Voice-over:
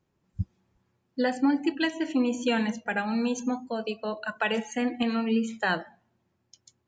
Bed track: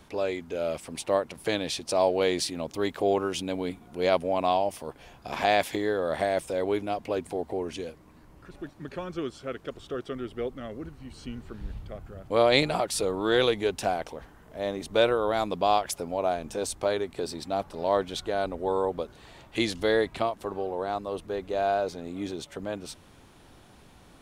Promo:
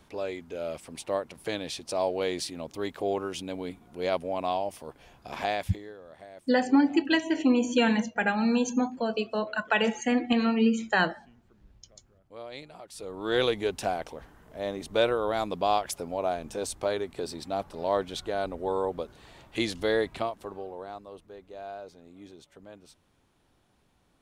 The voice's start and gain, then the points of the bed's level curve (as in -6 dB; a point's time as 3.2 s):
5.30 s, +2.5 dB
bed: 5.44 s -4.5 dB
6.04 s -21 dB
12.75 s -21 dB
13.38 s -2 dB
20.12 s -2 dB
21.34 s -14.5 dB